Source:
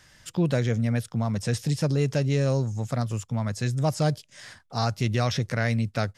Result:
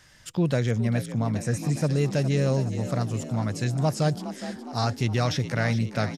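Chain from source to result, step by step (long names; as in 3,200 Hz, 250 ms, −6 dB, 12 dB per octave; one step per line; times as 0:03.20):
echo with shifted repeats 414 ms, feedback 60%, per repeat +49 Hz, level −12 dB
healed spectral selection 0:01.44–0:01.82, 2,100–5,600 Hz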